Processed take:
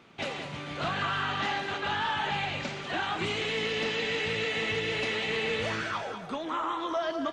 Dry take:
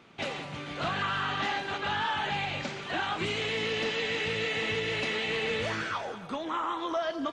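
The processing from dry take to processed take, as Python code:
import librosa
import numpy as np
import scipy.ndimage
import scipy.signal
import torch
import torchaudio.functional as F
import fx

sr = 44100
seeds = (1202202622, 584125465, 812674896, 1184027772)

y = x + 10.0 ** (-10.5 / 20.0) * np.pad(x, (int(196 * sr / 1000.0), 0))[:len(x)]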